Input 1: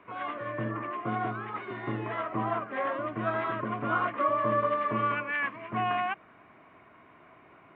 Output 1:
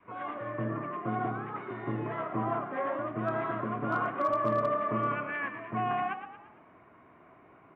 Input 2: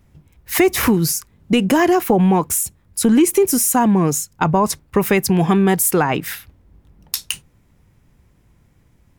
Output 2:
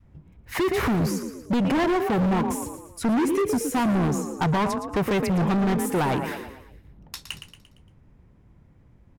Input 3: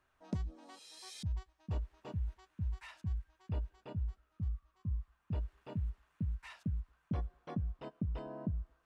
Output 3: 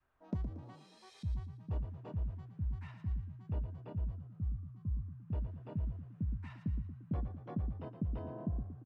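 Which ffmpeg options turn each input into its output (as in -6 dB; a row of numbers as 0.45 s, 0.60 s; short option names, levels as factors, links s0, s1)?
-filter_complex "[0:a]lowpass=f=1200:p=1,asplit=6[s0][s1][s2][s3][s4][s5];[s1]adelay=115,afreqshift=32,volume=0.316[s6];[s2]adelay=230,afreqshift=64,volume=0.146[s7];[s3]adelay=345,afreqshift=96,volume=0.0668[s8];[s4]adelay=460,afreqshift=128,volume=0.0309[s9];[s5]adelay=575,afreqshift=160,volume=0.0141[s10];[s0][s6][s7][s8][s9][s10]amix=inputs=6:normalize=0,adynamicequalizer=threshold=0.0447:dfrequency=450:dqfactor=1:tfrequency=450:tqfactor=1:attack=5:release=100:ratio=0.375:range=2:mode=cutabove:tftype=bell,asoftclip=type=hard:threshold=0.1"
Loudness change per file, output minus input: -1.5 LU, -7.5 LU, +0.5 LU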